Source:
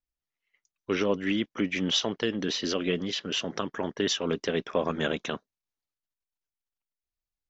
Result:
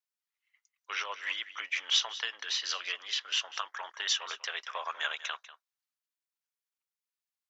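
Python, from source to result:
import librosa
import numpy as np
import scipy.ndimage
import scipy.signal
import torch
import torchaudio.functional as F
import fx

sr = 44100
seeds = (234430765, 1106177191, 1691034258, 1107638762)

y = scipy.signal.sosfilt(scipy.signal.butter(4, 930.0, 'highpass', fs=sr, output='sos'), x)
y = y + 10.0 ** (-15.5 / 20.0) * np.pad(y, (int(194 * sr / 1000.0), 0))[:len(y)]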